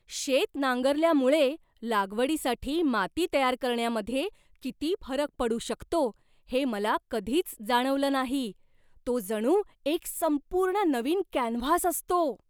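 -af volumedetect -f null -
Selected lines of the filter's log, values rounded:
mean_volume: -28.1 dB
max_volume: -11.3 dB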